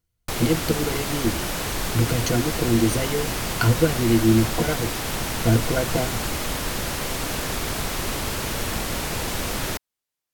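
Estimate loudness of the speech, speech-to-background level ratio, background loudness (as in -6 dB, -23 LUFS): -23.5 LUFS, 3.0 dB, -26.5 LUFS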